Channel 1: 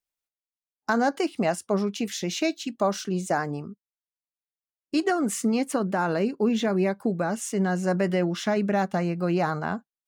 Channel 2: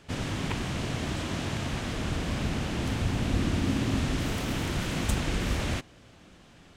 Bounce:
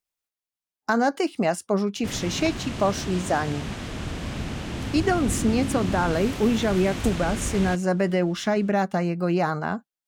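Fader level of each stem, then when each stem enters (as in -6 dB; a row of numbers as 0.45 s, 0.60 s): +1.5 dB, -1.0 dB; 0.00 s, 1.95 s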